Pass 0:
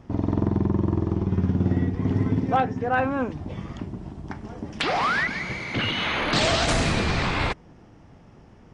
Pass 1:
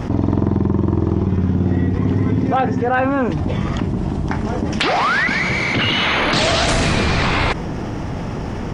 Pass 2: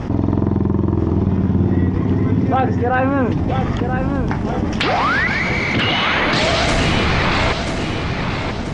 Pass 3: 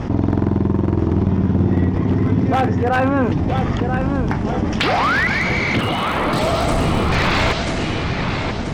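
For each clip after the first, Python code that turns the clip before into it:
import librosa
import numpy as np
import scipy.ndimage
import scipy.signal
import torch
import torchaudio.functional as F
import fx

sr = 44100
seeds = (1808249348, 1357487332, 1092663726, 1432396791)

y1 = fx.env_flatten(x, sr, amount_pct=70)
y1 = y1 * librosa.db_to_amplitude(3.0)
y2 = fx.air_absorb(y1, sr, metres=52.0)
y2 = fx.echo_feedback(y2, sr, ms=986, feedback_pct=38, wet_db=-7.0)
y3 = np.minimum(y2, 2.0 * 10.0 ** (-10.5 / 20.0) - y2)
y3 = fx.spec_box(y3, sr, start_s=5.79, length_s=1.33, low_hz=1400.0, high_hz=7600.0, gain_db=-8)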